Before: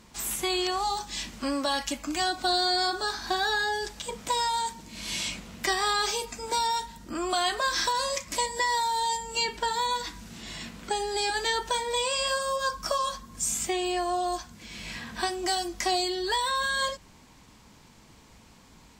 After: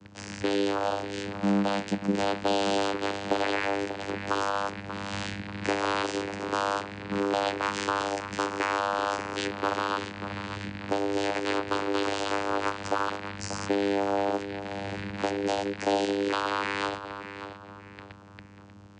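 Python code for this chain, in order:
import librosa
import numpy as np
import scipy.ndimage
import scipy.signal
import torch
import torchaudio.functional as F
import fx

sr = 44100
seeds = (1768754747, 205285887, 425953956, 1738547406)

y = fx.rattle_buzz(x, sr, strikes_db=-50.0, level_db=-20.0)
y = fx.echo_filtered(y, sr, ms=587, feedback_pct=40, hz=3300.0, wet_db=-10)
y = fx.vocoder(y, sr, bands=8, carrier='saw', carrier_hz=99.9)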